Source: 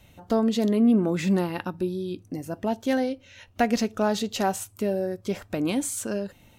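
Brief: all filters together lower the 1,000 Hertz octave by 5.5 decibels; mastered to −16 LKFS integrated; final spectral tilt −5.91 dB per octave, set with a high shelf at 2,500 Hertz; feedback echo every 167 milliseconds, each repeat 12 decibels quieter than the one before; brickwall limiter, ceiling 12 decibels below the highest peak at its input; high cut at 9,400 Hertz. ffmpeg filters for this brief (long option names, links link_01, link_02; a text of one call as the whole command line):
ffmpeg -i in.wav -af "lowpass=9400,equalizer=frequency=1000:width_type=o:gain=-7.5,highshelf=frequency=2500:gain=-7.5,alimiter=limit=-23dB:level=0:latency=1,aecho=1:1:167|334|501:0.251|0.0628|0.0157,volume=16.5dB" out.wav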